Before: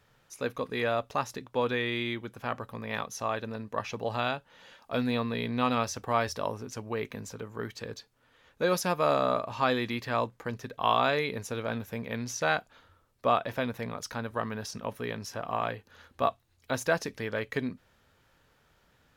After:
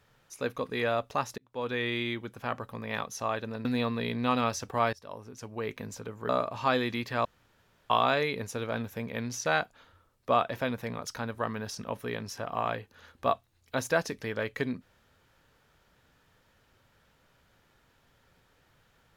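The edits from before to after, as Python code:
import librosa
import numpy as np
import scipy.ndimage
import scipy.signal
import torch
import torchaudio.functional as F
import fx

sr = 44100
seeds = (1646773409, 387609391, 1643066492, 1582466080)

y = fx.edit(x, sr, fx.fade_in_span(start_s=1.38, length_s=0.47),
    fx.cut(start_s=3.65, length_s=1.34),
    fx.fade_in_from(start_s=6.27, length_s=0.86, floor_db=-20.5),
    fx.cut(start_s=7.63, length_s=1.62),
    fx.room_tone_fill(start_s=10.21, length_s=0.65), tone=tone)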